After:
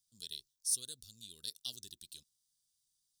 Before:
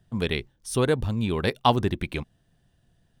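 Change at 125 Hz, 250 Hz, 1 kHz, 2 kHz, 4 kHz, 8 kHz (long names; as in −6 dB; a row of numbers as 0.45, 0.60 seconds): −37.5 dB, −38.5 dB, below −40 dB, −34.0 dB, −10.0 dB, +2.5 dB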